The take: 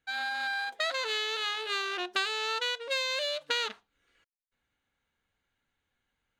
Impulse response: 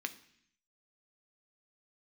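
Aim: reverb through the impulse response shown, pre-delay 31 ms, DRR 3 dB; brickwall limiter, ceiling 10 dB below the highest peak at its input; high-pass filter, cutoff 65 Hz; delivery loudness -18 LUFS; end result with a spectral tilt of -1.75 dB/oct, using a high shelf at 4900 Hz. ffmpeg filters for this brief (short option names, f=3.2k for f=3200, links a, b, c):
-filter_complex "[0:a]highpass=65,highshelf=f=4.9k:g=6.5,alimiter=limit=-22dB:level=0:latency=1,asplit=2[a][b];[1:a]atrim=start_sample=2205,adelay=31[c];[b][c]afir=irnorm=-1:irlink=0,volume=-4dB[d];[a][d]amix=inputs=2:normalize=0,volume=11dB"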